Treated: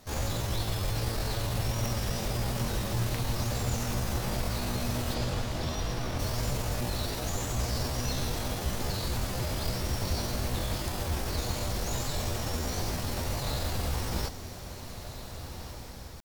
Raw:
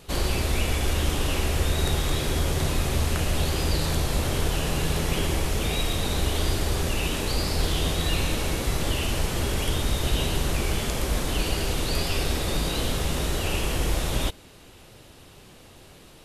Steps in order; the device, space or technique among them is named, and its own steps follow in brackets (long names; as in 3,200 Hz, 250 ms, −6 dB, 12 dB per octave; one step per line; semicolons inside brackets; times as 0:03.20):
chipmunk voice (pitch shifter +7 semitones)
0:05.14–0:06.18: low-pass filter 7,400 Hz → 3,800 Hz 12 dB per octave
feedback delay with all-pass diffusion 1,661 ms, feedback 43%, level −10 dB
level −6.5 dB